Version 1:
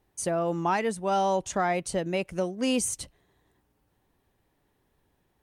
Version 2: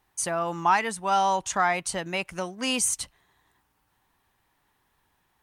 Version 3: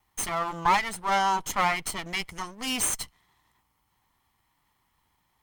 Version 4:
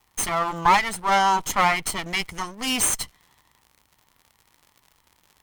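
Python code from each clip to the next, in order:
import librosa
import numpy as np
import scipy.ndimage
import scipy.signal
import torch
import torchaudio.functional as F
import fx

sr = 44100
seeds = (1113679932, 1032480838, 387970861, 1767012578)

y1 = fx.low_shelf_res(x, sr, hz=710.0, db=-8.5, q=1.5)
y1 = y1 * librosa.db_to_amplitude(5.0)
y2 = fx.lower_of_two(y1, sr, delay_ms=0.96)
y3 = fx.dmg_crackle(y2, sr, seeds[0], per_s=100.0, level_db=-45.0)
y3 = y3 * librosa.db_to_amplitude(5.0)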